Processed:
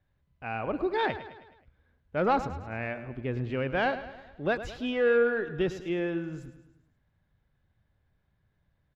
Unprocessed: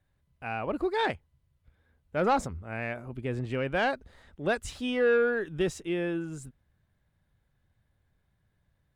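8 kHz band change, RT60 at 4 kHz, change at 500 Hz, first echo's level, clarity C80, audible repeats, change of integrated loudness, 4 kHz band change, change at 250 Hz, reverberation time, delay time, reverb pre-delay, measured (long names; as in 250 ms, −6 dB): below −10 dB, no reverb audible, +0.5 dB, −13.0 dB, no reverb audible, 4, 0.0 dB, −2.0 dB, 0.0 dB, no reverb audible, 106 ms, no reverb audible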